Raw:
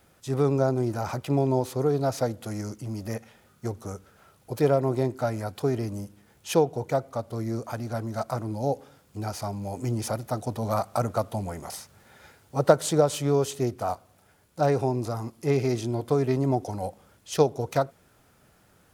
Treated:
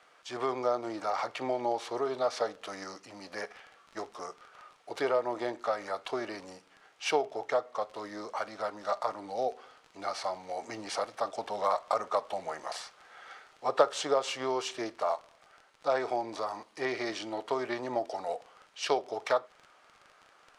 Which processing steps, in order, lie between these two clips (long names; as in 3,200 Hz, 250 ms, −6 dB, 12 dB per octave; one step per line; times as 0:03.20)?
high-pass filter 910 Hz 12 dB per octave
high-shelf EQ 5,400 Hz −8 dB
in parallel at +1.5 dB: downward compressor, threshold −35 dBFS, peak gain reduction 15 dB
on the sum: surface crackle 29 per second −37 dBFS
speed change −8%
high-frequency loss of the air 81 metres
on a send at −16 dB: convolution reverb, pre-delay 7 ms